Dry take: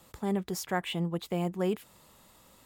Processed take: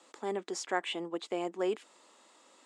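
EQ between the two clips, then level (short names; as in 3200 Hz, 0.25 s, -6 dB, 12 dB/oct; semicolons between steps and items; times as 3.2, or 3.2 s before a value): elliptic band-pass 290–7900 Hz, stop band 40 dB; 0.0 dB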